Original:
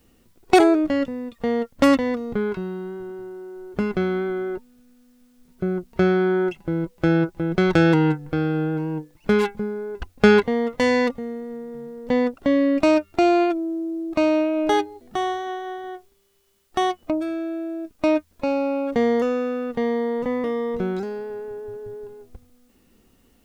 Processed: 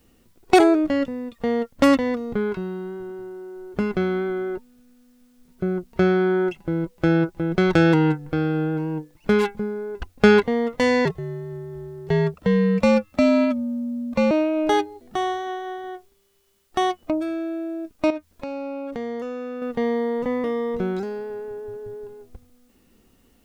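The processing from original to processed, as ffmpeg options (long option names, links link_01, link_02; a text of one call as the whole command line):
ffmpeg -i in.wav -filter_complex "[0:a]asettb=1/sr,asplit=3[link_01][link_02][link_03];[link_01]atrim=end=11.054[link_04];[link_02]atrim=start=11.05:end=14.31,asetpts=PTS-STARTPTS,afade=type=in:duration=0.004:curve=qsin,afade=type=out:start_time=3.256:duration=0.004:curve=qsin,afreqshift=-88[link_05];[link_03]atrim=start=14.306[link_06];[link_04][link_05]acrossfade=duration=0.004:curve1=hsin:curve2=qsin[link_07];[link_07][link_06]acrossfade=duration=0.004:curve1=qsin:curve2=hsin,asettb=1/sr,asplit=3[link_08][link_09][link_10];[link_08]atrim=end=18.104[link_11];[link_09]atrim=start=18.1:end=19.62,asetpts=PTS-STARTPTS,afade=type=in:duration=0.004:curve=qsin,afade=type=out:start_time=1.516:duration=0.004:curve=qsin,acompressor=threshold=-31dB:ratio=2.5:attack=3.2:release=140:knee=1:detection=peak[link_12];[link_10]atrim=start=19.616[link_13];[link_11][link_12]acrossfade=duration=0.004:curve1=hsin:curve2=qsin[link_14];[link_14][link_13]acrossfade=duration=0.004:curve1=qsin:curve2=hsin" out.wav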